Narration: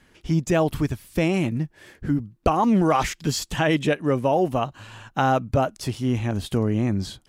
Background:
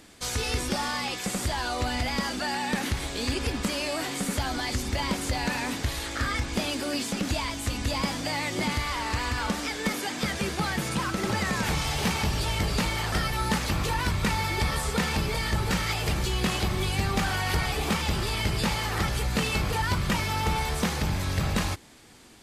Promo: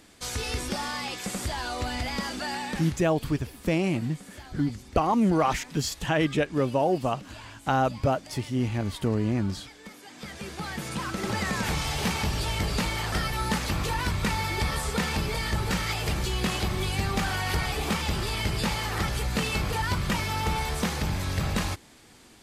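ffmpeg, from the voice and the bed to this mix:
-filter_complex "[0:a]adelay=2500,volume=-3.5dB[a];[1:a]volume=13.5dB,afade=t=out:st=2.56:d=0.51:silence=0.188365,afade=t=in:st=10.02:d=1.44:silence=0.158489[b];[a][b]amix=inputs=2:normalize=0"

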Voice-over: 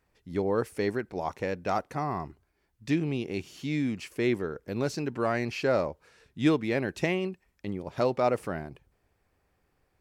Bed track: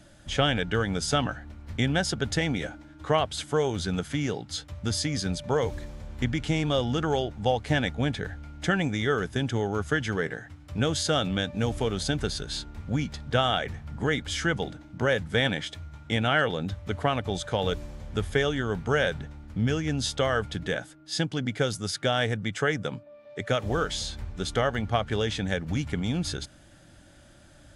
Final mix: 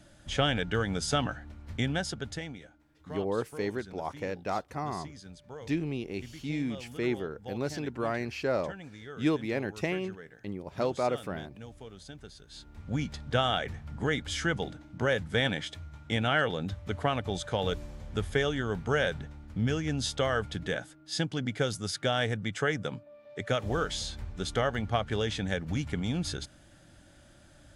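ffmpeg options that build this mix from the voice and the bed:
-filter_complex "[0:a]adelay=2800,volume=-3.5dB[a];[1:a]volume=13dB,afade=t=out:st=1.67:d=0.97:silence=0.158489,afade=t=in:st=12.49:d=0.53:silence=0.158489[b];[a][b]amix=inputs=2:normalize=0"

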